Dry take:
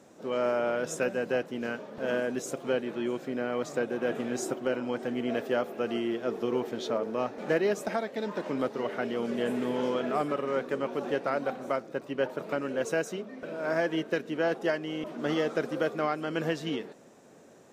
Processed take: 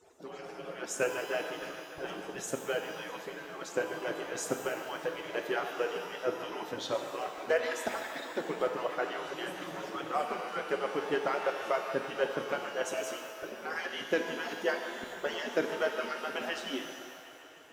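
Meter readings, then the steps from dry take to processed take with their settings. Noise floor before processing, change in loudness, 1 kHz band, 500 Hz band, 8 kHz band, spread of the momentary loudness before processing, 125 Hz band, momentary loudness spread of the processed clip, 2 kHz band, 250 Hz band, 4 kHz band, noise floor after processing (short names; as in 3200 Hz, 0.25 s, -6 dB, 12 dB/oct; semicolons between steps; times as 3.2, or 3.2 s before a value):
-54 dBFS, -4.0 dB, -1.0 dB, -4.5 dB, +1.5 dB, 5 LU, -10.0 dB, 9 LU, 0.0 dB, -9.5 dB, +1.5 dB, -48 dBFS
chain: median-filter separation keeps percussive; band-limited delay 0.149 s, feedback 80%, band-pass 1400 Hz, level -11 dB; shimmer reverb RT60 1.4 s, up +12 st, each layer -8 dB, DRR 5 dB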